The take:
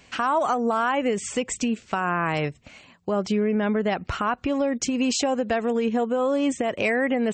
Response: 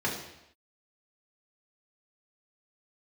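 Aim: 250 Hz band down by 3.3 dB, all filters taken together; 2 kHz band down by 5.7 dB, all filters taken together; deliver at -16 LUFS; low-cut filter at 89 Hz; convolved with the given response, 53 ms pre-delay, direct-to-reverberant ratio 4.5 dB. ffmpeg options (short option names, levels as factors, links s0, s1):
-filter_complex "[0:a]highpass=89,equalizer=f=250:t=o:g=-3.5,equalizer=f=2000:t=o:g=-7.5,asplit=2[s0][s1];[1:a]atrim=start_sample=2205,adelay=53[s2];[s1][s2]afir=irnorm=-1:irlink=0,volume=0.211[s3];[s0][s3]amix=inputs=2:normalize=0,volume=2.66"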